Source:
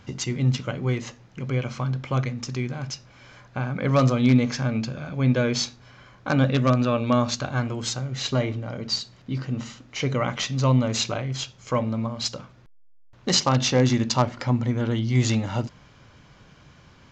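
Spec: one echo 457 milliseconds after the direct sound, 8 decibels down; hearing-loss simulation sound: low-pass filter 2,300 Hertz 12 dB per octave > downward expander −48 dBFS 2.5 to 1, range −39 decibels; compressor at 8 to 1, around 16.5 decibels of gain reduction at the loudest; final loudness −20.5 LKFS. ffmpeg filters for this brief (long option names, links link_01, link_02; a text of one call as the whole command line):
ffmpeg -i in.wav -af "acompressor=threshold=-32dB:ratio=8,lowpass=2300,aecho=1:1:457:0.398,agate=range=-39dB:threshold=-48dB:ratio=2.5,volume=16.5dB" out.wav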